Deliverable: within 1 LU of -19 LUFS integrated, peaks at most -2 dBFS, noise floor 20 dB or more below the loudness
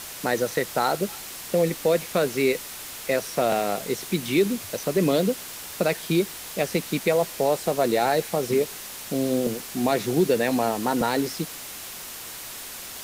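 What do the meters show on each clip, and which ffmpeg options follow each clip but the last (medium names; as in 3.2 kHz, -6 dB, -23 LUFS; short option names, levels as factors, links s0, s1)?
noise floor -38 dBFS; noise floor target -45 dBFS; loudness -25.0 LUFS; peak level -10.0 dBFS; loudness target -19.0 LUFS
-> -af "afftdn=nr=7:nf=-38"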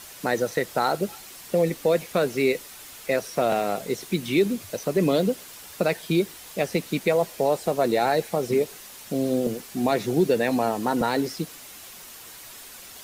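noise floor -44 dBFS; noise floor target -45 dBFS
-> -af "afftdn=nr=6:nf=-44"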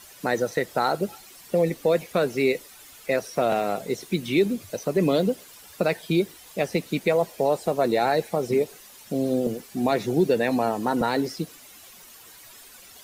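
noise floor -48 dBFS; loudness -25.0 LUFS; peak level -10.5 dBFS; loudness target -19.0 LUFS
-> -af "volume=2"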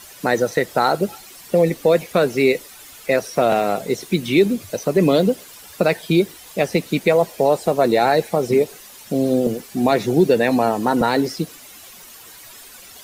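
loudness -19.0 LUFS; peak level -4.5 dBFS; noise floor -42 dBFS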